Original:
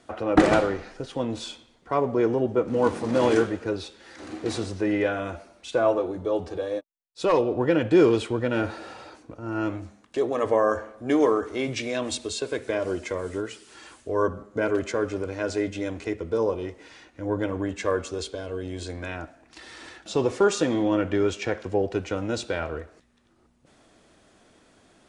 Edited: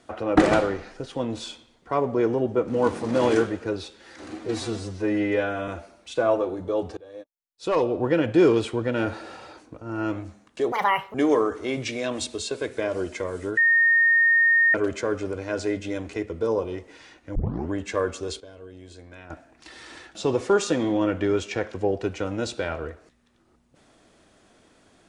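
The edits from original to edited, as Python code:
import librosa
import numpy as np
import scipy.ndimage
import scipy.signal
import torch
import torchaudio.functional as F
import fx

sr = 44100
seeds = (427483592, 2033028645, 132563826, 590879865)

y = fx.edit(x, sr, fx.stretch_span(start_s=4.39, length_s=0.86, factor=1.5),
    fx.fade_in_from(start_s=6.54, length_s=0.95, floor_db=-22.0),
    fx.speed_span(start_s=10.29, length_s=0.76, speed=1.8),
    fx.bleep(start_s=13.48, length_s=1.17, hz=1840.0, db=-15.0),
    fx.tape_start(start_s=17.26, length_s=0.35),
    fx.clip_gain(start_s=18.31, length_s=0.9, db=-11.0), tone=tone)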